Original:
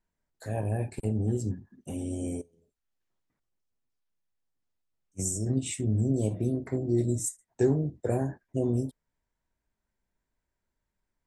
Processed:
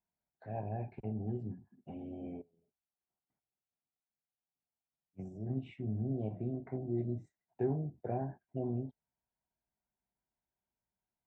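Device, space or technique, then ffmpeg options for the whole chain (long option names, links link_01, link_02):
bass cabinet: -af "highpass=70,equalizer=frequency=88:width_type=q:width=4:gain=-9,equalizer=frequency=300:width_type=q:width=4:gain=-5,equalizer=frequency=500:width_type=q:width=4:gain=-6,equalizer=frequency=740:width_type=q:width=4:gain=7,equalizer=frequency=1200:width_type=q:width=4:gain=-6,equalizer=frequency=1800:width_type=q:width=4:gain=-7,lowpass=frequency=2300:width=0.5412,lowpass=frequency=2300:width=1.3066,volume=-7dB"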